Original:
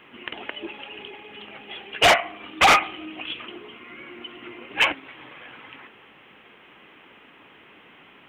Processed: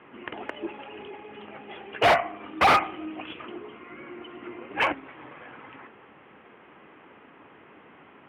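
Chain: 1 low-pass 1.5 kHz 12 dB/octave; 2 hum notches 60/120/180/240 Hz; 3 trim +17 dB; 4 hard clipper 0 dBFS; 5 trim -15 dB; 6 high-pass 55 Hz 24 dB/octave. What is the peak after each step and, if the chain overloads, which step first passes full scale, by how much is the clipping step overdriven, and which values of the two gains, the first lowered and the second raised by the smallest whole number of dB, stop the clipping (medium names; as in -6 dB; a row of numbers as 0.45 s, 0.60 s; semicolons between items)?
-10.0 dBFS, -10.0 dBFS, +7.0 dBFS, 0.0 dBFS, -15.0 dBFS, -11.5 dBFS; step 3, 7.0 dB; step 3 +10 dB, step 5 -8 dB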